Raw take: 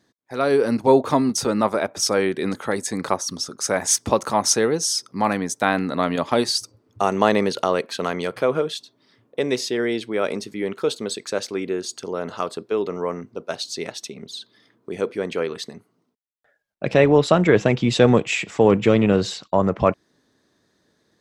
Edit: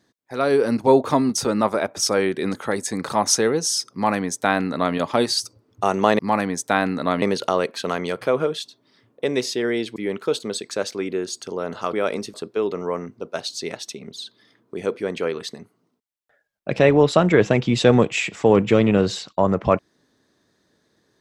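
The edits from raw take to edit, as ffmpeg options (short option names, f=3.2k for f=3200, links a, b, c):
-filter_complex "[0:a]asplit=7[a][b][c][d][e][f][g];[a]atrim=end=3.102[h];[b]atrim=start=4.278:end=7.372[i];[c]atrim=start=5.108:end=6.142[j];[d]atrim=start=7.368:end=10.112[k];[e]atrim=start=10.518:end=12.492[l];[f]atrim=start=10.108:end=10.522[m];[g]atrim=start=12.488[n];[h][i]acrossfade=d=0.004:c1=hsin:c2=hsin[o];[o][j]acrossfade=d=0.004:c1=hsin:c2=hsin[p];[p][k]acrossfade=d=0.004:c1=hsin:c2=hsin[q];[q][l]acrossfade=d=0.004:c1=hsin:c2=hsin[r];[r][m]acrossfade=d=0.004:c1=hsin:c2=hsin[s];[s][n]acrossfade=d=0.004:c1=hsin:c2=hsin"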